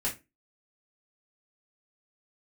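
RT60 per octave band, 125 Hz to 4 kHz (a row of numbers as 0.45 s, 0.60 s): 0.30 s, 0.35 s, 0.25 s, 0.20 s, 0.25 s, 0.20 s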